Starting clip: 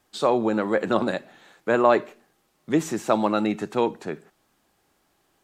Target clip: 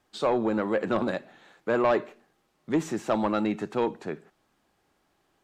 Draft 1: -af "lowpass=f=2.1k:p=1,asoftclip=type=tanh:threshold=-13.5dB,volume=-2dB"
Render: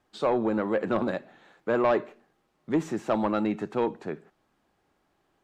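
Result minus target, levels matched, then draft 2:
4000 Hz band -3.0 dB
-af "lowpass=f=4.5k:p=1,asoftclip=type=tanh:threshold=-13.5dB,volume=-2dB"

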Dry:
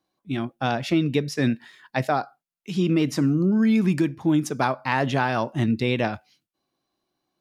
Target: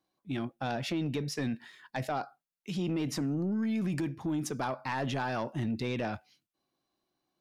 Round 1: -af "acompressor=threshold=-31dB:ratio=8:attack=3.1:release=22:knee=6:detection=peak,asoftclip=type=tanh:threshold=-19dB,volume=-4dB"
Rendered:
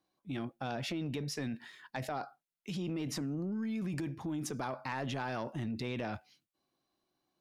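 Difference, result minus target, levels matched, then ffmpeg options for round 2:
compressor: peak gain reduction +6 dB
-af "acompressor=threshold=-24dB:ratio=8:attack=3.1:release=22:knee=6:detection=peak,asoftclip=type=tanh:threshold=-19dB,volume=-4dB"

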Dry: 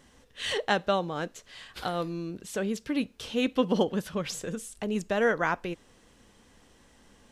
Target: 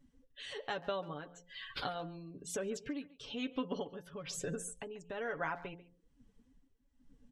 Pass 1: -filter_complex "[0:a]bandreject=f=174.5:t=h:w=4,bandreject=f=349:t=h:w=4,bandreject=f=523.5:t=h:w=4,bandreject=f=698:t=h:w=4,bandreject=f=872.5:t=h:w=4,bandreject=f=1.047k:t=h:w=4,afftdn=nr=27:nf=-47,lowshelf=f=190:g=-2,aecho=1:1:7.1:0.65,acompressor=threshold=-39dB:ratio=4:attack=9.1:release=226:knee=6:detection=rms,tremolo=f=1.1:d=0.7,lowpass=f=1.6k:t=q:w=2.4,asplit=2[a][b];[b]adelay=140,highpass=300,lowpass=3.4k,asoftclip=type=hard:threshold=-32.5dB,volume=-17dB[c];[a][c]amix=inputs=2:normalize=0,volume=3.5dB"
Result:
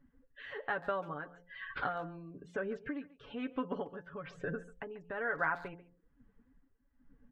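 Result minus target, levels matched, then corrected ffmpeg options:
2000 Hz band +4.5 dB
-filter_complex "[0:a]bandreject=f=174.5:t=h:w=4,bandreject=f=349:t=h:w=4,bandreject=f=523.5:t=h:w=4,bandreject=f=698:t=h:w=4,bandreject=f=872.5:t=h:w=4,bandreject=f=1.047k:t=h:w=4,afftdn=nr=27:nf=-47,lowshelf=f=190:g=-2,aecho=1:1:7.1:0.65,acompressor=threshold=-39dB:ratio=4:attack=9.1:release=226:knee=6:detection=rms,tremolo=f=1.1:d=0.7,asplit=2[a][b];[b]adelay=140,highpass=300,lowpass=3.4k,asoftclip=type=hard:threshold=-32.5dB,volume=-17dB[c];[a][c]amix=inputs=2:normalize=0,volume=3.5dB"

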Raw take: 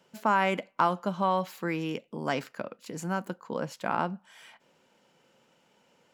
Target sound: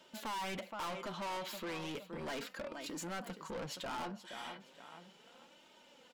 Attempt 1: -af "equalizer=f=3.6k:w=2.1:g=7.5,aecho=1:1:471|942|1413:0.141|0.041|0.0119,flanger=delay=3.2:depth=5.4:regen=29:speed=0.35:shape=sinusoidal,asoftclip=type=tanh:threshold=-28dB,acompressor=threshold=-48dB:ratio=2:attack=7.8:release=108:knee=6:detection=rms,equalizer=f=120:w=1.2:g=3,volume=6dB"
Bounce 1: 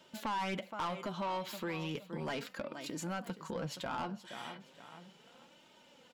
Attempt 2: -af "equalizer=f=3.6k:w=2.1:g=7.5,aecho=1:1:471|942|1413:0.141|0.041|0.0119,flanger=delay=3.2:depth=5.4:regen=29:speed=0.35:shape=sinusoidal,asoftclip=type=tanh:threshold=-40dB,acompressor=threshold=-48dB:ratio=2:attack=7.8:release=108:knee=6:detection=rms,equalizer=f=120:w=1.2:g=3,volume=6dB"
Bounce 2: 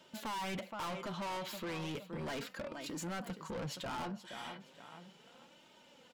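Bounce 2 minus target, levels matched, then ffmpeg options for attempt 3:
125 Hz band +4.5 dB
-af "equalizer=f=3.6k:w=2.1:g=7.5,aecho=1:1:471|942|1413:0.141|0.041|0.0119,flanger=delay=3.2:depth=5.4:regen=29:speed=0.35:shape=sinusoidal,asoftclip=type=tanh:threshold=-40dB,acompressor=threshold=-48dB:ratio=2:attack=7.8:release=108:knee=6:detection=rms,equalizer=f=120:w=1.2:g=-6,volume=6dB"

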